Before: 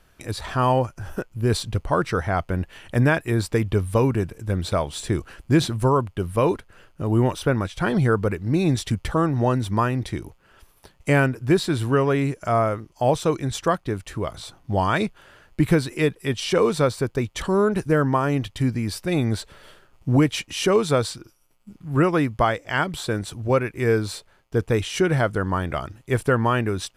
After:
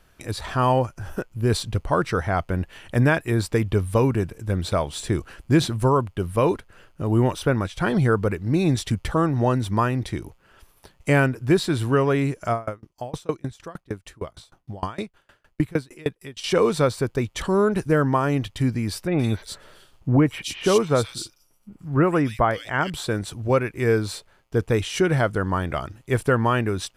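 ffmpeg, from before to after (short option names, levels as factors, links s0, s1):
-filter_complex "[0:a]asettb=1/sr,asplit=3[s0][s1][s2];[s0]atrim=end=12.524[s3];[s1]atrim=start=12.52:end=16.44,asetpts=PTS-STARTPTS,afade=t=in:d=0.004:c=qsin,afade=t=out:st=3.916:d=0.004:c=qsin,aeval=exprs='val(0)*pow(10,-29*if(lt(mod(6.5*n/s,1),2*abs(6.5)/1000),1-mod(6.5*n/s,1)/(2*abs(6.5)/1000),(mod(6.5*n/s,1)-2*abs(6.5)/1000)/(1-2*abs(6.5)/1000))/20)':c=same[s4];[s2]atrim=start=16.436[s5];[s3][s4]acrossfade=d=0.004:c1=hsin:c2=qsin[s6];[s6][s5]acrossfade=d=0.004:c1=qsin:c2=hsin,asettb=1/sr,asplit=3[s7][s8][s9];[s7]atrim=end=19.074[s10];[s8]atrim=start=19.07:end=22.9,asetpts=PTS-STARTPTS,afade=t=in:d=0.004:c=qsin,afade=t=out:st=3.826:d=0.004:c=qsin,acrossover=split=2600[s11][s12];[s12]adelay=120[s13];[s11][s13]amix=inputs=2:normalize=0,atrim=end_sample=168903[s14];[s9]atrim=start=22.896[s15];[s10][s14]acrossfade=d=0.004:c1=hsin:c2=qsin[s16];[s16][s15]acrossfade=d=0.004:c1=qsin:c2=hsin"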